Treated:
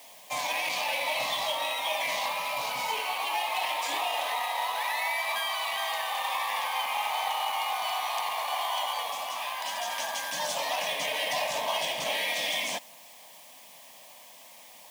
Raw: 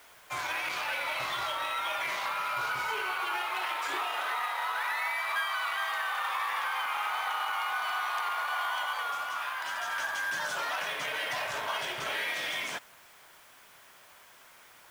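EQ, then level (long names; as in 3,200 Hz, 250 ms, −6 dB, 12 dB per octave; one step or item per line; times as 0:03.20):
low-shelf EQ 80 Hz −11.5 dB
phaser with its sweep stopped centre 380 Hz, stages 6
+8.0 dB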